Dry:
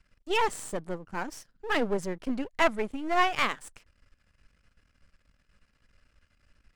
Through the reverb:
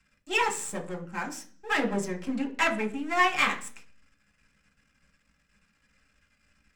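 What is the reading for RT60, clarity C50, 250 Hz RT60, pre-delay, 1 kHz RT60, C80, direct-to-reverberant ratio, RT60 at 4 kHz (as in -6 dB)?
0.45 s, 13.0 dB, 0.60 s, 4 ms, 0.40 s, 18.5 dB, 0.0 dB, 0.50 s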